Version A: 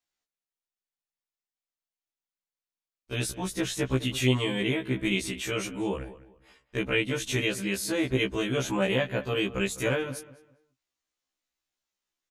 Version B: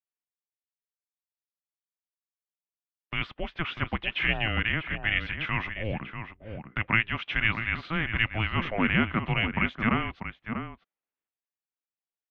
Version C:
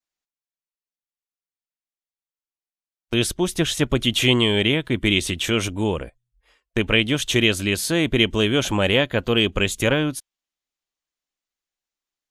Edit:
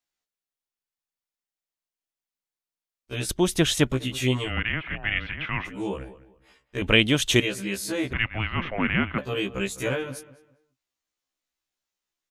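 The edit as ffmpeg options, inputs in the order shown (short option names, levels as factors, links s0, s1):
-filter_complex "[2:a]asplit=2[s0][s1];[1:a]asplit=2[s2][s3];[0:a]asplit=5[s4][s5][s6][s7][s8];[s4]atrim=end=3.292[s9];[s0]atrim=start=3.288:end=3.922[s10];[s5]atrim=start=3.918:end=4.52[s11];[s2]atrim=start=4.42:end=5.74[s12];[s6]atrim=start=5.64:end=6.822[s13];[s1]atrim=start=6.818:end=7.402[s14];[s7]atrim=start=7.398:end=8.132[s15];[s3]atrim=start=8.128:end=9.182[s16];[s8]atrim=start=9.178[s17];[s9][s10]acrossfade=d=0.004:c1=hsin:c2=hsin[s18];[s18][s11]acrossfade=d=0.004:c1=hsin:c2=hsin[s19];[s19][s12]acrossfade=d=0.1:c1=tri:c2=tri[s20];[s20][s13]acrossfade=d=0.1:c1=tri:c2=tri[s21];[s21][s14]acrossfade=d=0.004:c1=hsin:c2=hsin[s22];[s22][s15]acrossfade=d=0.004:c1=hsin:c2=hsin[s23];[s23][s16]acrossfade=d=0.004:c1=hsin:c2=hsin[s24];[s24][s17]acrossfade=d=0.004:c1=hsin:c2=hsin"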